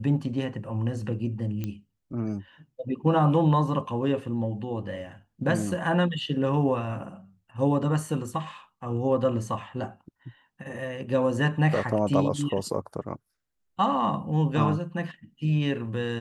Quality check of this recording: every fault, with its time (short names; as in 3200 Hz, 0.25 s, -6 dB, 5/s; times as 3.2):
1.64 pop -19 dBFS